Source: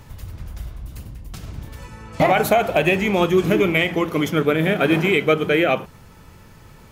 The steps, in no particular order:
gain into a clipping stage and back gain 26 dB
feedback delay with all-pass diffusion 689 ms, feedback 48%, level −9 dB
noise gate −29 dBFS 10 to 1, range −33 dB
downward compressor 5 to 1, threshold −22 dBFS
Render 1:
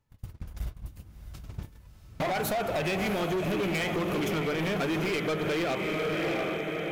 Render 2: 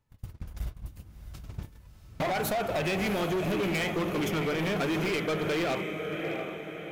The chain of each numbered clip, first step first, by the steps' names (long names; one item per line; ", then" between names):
noise gate, then feedback delay with all-pass diffusion, then downward compressor, then gain into a clipping stage and back
downward compressor, then noise gate, then feedback delay with all-pass diffusion, then gain into a clipping stage and back